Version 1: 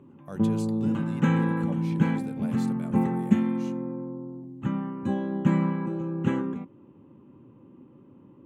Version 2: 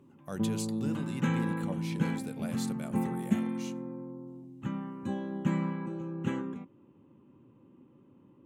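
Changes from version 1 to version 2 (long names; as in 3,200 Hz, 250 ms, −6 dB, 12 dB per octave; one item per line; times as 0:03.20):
background −7.0 dB
master: add high-shelf EQ 2,800 Hz +8 dB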